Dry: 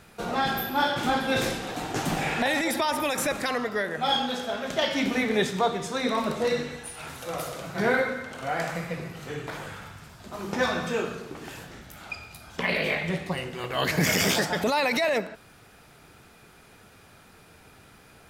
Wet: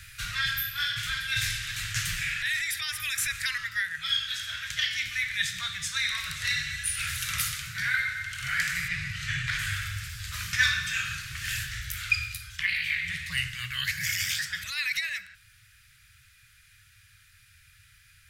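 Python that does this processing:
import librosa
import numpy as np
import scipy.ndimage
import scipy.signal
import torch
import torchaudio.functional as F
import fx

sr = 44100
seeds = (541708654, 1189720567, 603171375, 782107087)

y = fx.air_absorb(x, sr, metres=53.0, at=(8.88, 9.59))
y = scipy.signal.sosfilt(scipy.signal.ellip(3, 1.0, 40, [110.0, 1700.0], 'bandstop', fs=sr, output='sos'), y)
y = fx.rider(y, sr, range_db=10, speed_s=0.5)
y = y * 10.0 ** (3.0 / 20.0)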